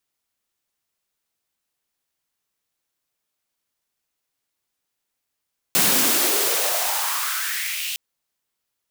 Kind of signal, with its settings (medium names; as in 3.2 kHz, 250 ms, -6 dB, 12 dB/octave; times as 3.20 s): swept filtered noise white, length 2.21 s highpass, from 170 Hz, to 3 kHz, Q 3.7, exponential, gain ramp -13 dB